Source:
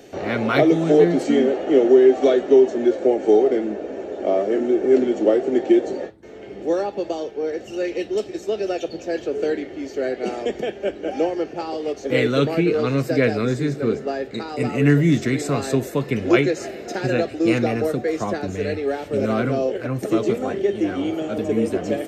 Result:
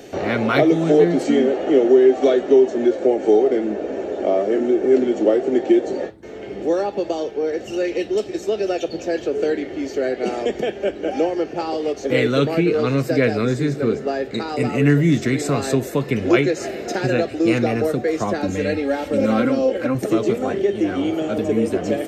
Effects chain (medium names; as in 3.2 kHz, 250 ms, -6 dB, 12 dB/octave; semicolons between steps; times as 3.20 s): in parallel at +1 dB: compression, threshold -26 dBFS, peak gain reduction 16.5 dB; 18.38–19.95 s: on the sum: comb 3.7 ms, depth 70%; trim -1.5 dB